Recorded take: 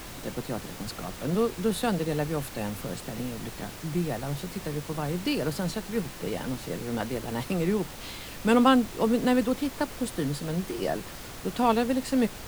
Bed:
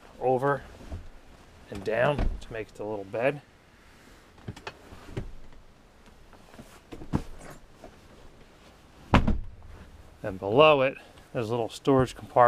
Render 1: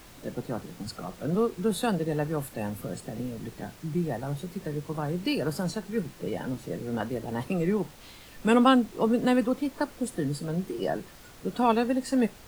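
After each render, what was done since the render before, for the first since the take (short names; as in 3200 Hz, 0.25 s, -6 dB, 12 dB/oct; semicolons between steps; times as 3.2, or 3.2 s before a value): noise print and reduce 9 dB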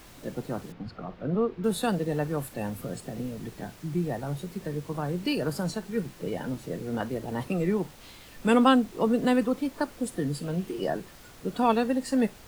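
0.72–1.64 air absorption 310 m; 10.35–10.82 bell 2800 Hz +5.5 dB 0.39 oct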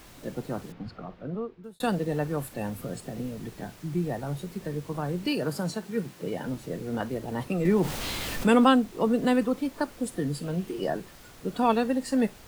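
0.86–1.8 fade out; 5.27–6.45 HPF 97 Hz; 7.65–8.7 fast leveller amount 50%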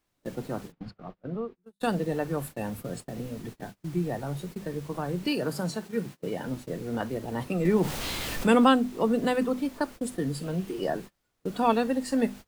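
notches 50/100/150/200/250 Hz; gate -39 dBFS, range -28 dB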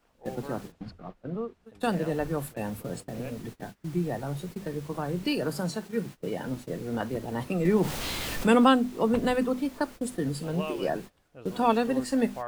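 add bed -17.5 dB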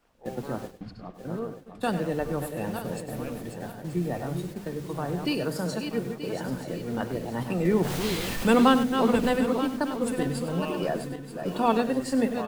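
regenerating reverse delay 0.465 s, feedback 54%, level -7 dB; echo 99 ms -12 dB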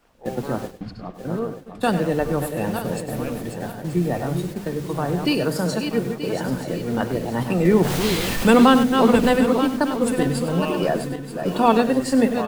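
gain +7 dB; limiter -3 dBFS, peak gain reduction 3 dB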